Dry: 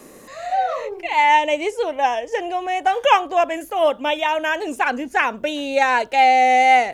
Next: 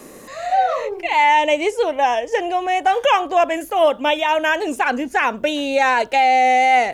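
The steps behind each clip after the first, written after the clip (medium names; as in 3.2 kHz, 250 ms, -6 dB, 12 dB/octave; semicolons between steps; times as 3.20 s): peak limiter -10.5 dBFS, peak gain reduction 7 dB; trim +3.5 dB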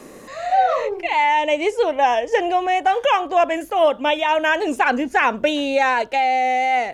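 treble shelf 8.8 kHz -9.5 dB; gain riding 0.5 s; trim -1 dB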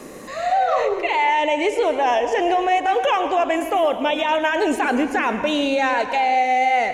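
peak limiter -15 dBFS, peak gain reduction 9 dB; on a send at -9 dB: reverberation RT60 1.2 s, pre-delay 102 ms; on the sum: trim +3 dB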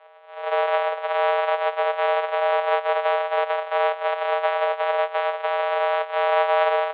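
sorted samples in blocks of 256 samples; mistuned SSB +280 Hz 240–3400 Hz; spectral contrast expander 1.5:1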